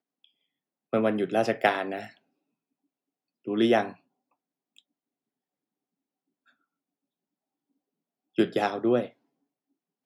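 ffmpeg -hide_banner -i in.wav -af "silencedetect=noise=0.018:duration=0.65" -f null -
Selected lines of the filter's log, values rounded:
silence_start: 0.00
silence_end: 0.93 | silence_duration: 0.93
silence_start: 2.07
silence_end: 3.47 | silence_duration: 1.40
silence_start: 3.92
silence_end: 8.38 | silence_duration: 4.46
silence_start: 9.06
silence_end: 10.05 | silence_duration: 0.99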